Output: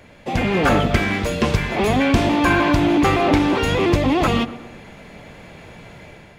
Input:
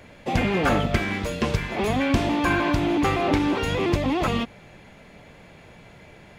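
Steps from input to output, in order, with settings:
automatic gain control gain up to 6.5 dB
in parallel at −9 dB: soft clipping −15.5 dBFS, distortion −12 dB
on the sum: tape delay 121 ms, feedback 59%, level −13.5 dB, low-pass 1,500 Hz
level −2 dB

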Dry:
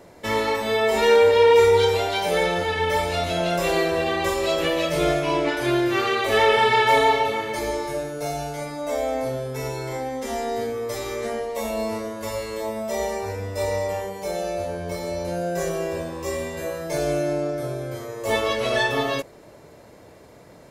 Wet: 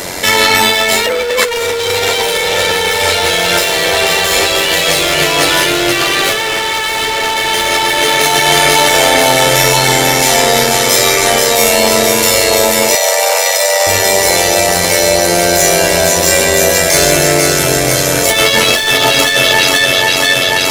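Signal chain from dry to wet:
0:01.06–0:01.49: three sine waves on the formant tracks
tilt shelving filter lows −9 dB, about 1,500 Hz
notch filter 1,100 Hz, Q 13
delay that swaps between a low-pass and a high-pass 244 ms, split 1,400 Hz, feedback 86%, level −3 dB
amplitude modulation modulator 91 Hz, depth 45%
gain into a clipping stage and back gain 23.5 dB
0:12.95–0:13.87: Butterworth high-pass 480 Hz 96 dB per octave
compressor whose output falls as the input rises −33 dBFS, ratio −0.5
boost into a limiter +29 dB
level −1 dB

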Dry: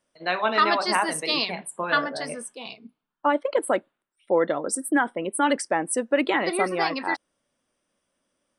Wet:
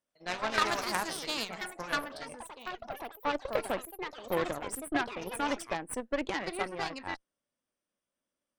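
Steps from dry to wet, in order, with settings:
delay with pitch and tempo change per echo 83 ms, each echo +4 semitones, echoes 3, each echo −6 dB
harmonic generator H 3 −13 dB, 8 −27 dB, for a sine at −6 dBFS
level −4 dB

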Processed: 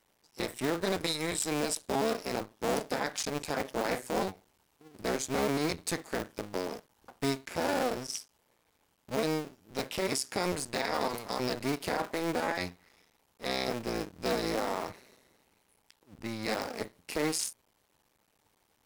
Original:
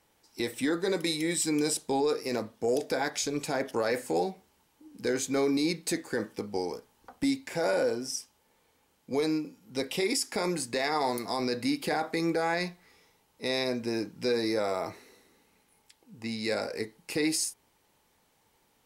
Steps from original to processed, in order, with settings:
sub-harmonics by changed cycles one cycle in 2, muted

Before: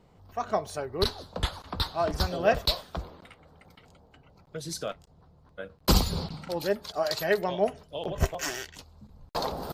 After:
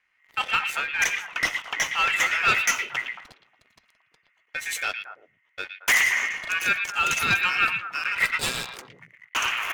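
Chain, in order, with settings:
leveller curve on the samples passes 3
ring modulation 2,000 Hz
echo through a band-pass that steps 113 ms, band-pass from 2,600 Hz, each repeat −1.4 octaves, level −4 dB
level −3 dB

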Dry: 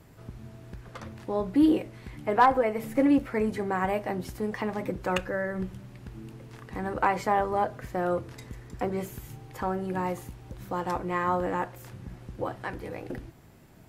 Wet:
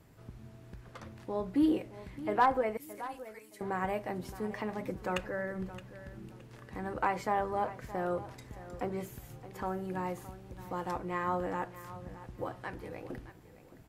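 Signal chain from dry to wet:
0:02.77–0:03.61: first difference
on a send: repeating echo 619 ms, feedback 25%, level −15 dB
on the sum: level −6 dB

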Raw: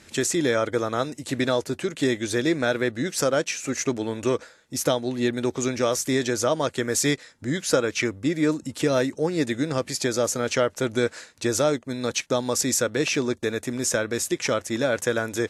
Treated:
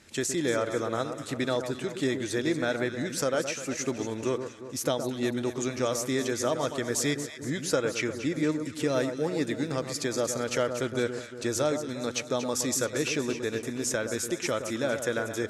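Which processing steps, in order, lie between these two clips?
0:09.21–0:10.15: surface crackle 88 per second −40 dBFS
delay that swaps between a low-pass and a high-pass 117 ms, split 1,400 Hz, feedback 71%, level −8 dB
level −5.5 dB

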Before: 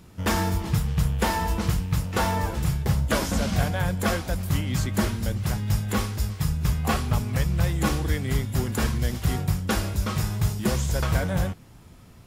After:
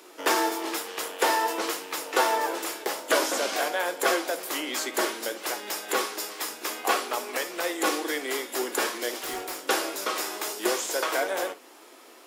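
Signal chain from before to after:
Butterworth high-pass 310 Hz 48 dB per octave
in parallel at −1.5 dB: downward compressor, threshold −39 dBFS, peak gain reduction 17 dB
0:09.21–0:09.65: on the sum: hard clipping −32 dBFS, distortion −25 dB
flanger 0.53 Hz, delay 4.7 ms, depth 9.2 ms, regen +77%
on a send at −15 dB: convolution reverb, pre-delay 46 ms
on the sum: level +6 dB

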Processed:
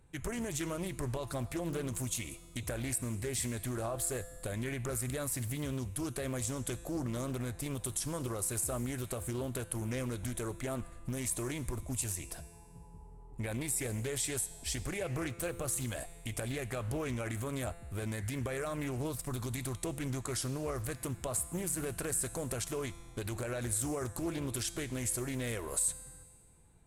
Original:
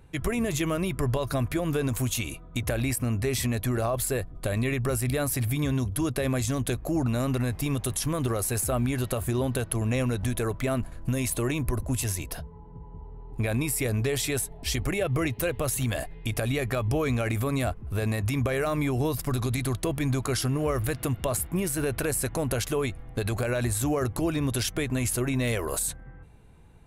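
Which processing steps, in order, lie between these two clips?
parametric band 8,300 Hz +11 dB 0.58 octaves
notch filter 2,800 Hz, Q 26
tuned comb filter 170 Hz, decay 1.7 s, mix 70%
highs frequency-modulated by the lows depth 0.43 ms

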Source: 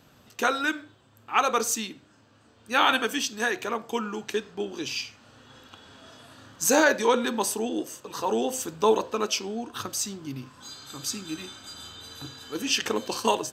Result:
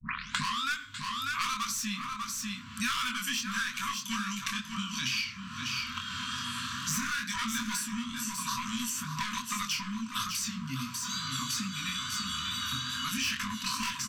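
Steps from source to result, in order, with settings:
turntable start at the beginning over 0.59 s
low-shelf EQ 160 Hz −6 dB
soft clipping −25.5 dBFS, distortion −6 dB
chorus effect 2.4 Hz, delay 19.5 ms, depth 5.4 ms
linear-phase brick-wall band-stop 270–1,000 Hz
single-tap delay 571 ms −11 dB
wrong playback speed 25 fps video run at 24 fps
multiband upward and downward compressor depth 100%
level +4.5 dB

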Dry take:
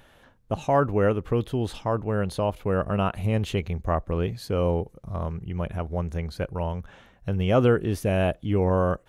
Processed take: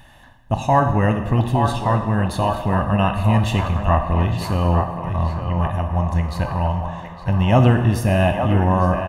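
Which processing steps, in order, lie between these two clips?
comb filter 1.1 ms, depth 74%
feedback echo with a band-pass in the loop 863 ms, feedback 63%, band-pass 1,000 Hz, level −4.5 dB
dense smooth reverb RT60 1.5 s, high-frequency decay 0.75×, DRR 6 dB
level +4.5 dB

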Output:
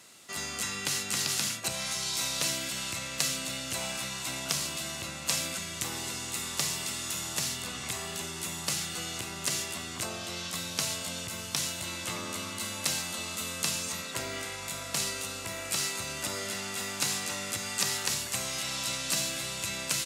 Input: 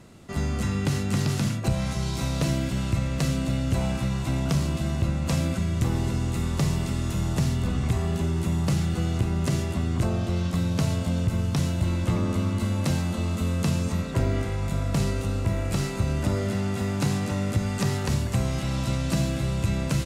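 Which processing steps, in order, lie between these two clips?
high-pass filter 1,100 Hz 6 dB per octave
high-shelf EQ 2,500 Hz +11.5 dB
level −2 dB

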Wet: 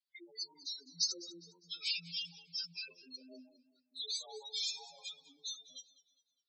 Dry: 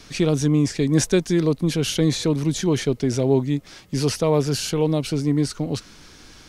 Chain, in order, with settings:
partials spread apart or drawn together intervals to 92%
stiff-string resonator 85 Hz, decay 0.29 s, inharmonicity 0.002
echo with a time of its own for lows and highs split 380 Hz, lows 310 ms, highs 83 ms, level −7.5 dB
noise reduction from a noise print of the clip's start 17 dB
noise gate −51 dBFS, range −22 dB
drawn EQ curve 220 Hz 0 dB, 410 Hz +5 dB, 5,000 Hz +14 dB, 9,000 Hz +11 dB
gate on every frequency bin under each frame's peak −10 dB strong
first-order pre-emphasis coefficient 0.97
feedback echo with a swinging delay time 203 ms, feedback 39%, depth 88 cents, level −18 dB
level −3 dB

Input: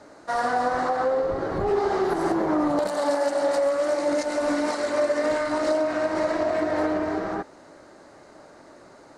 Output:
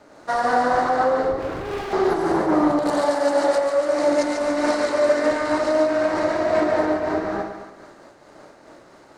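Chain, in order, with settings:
dead-zone distortion −59 dBFS
high-shelf EQ 8,900 Hz −5.5 dB
0:01.39–0:01.93: gain into a clipping stage and back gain 32 dB
on a send: echo with a time of its own for lows and highs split 1,000 Hz, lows 109 ms, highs 143 ms, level −5.5 dB
on the sum: amplitude modulation by smooth noise, depth 55%
level +5.5 dB

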